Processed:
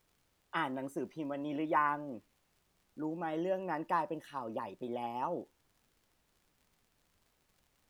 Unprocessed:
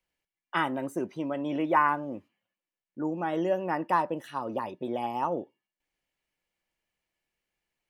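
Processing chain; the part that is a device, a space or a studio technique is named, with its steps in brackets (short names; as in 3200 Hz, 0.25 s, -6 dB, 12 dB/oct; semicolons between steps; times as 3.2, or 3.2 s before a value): vinyl LP (crackle; pink noise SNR 36 dB); gain -7 dB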